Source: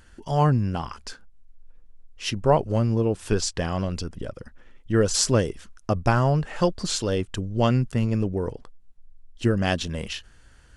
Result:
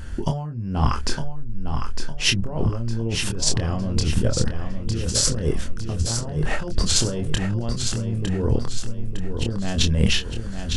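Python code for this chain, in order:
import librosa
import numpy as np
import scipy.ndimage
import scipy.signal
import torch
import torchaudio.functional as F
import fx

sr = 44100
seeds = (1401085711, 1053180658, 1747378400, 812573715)

y = fx.low_shelf(x, sr, hz=320.0, db=11.0)
y = fx.over_compress(y, sr, threshold_db=-26.0, ratio=-1.0)
y = fx.doubler(y, sr, ms=26.0, db=-5)
y = fx.echo_feedback(y, sr, ms=907, feedback_pct=44, wet_db=-7.0)
y = y * 10.0 ** (2.0 / 20.0)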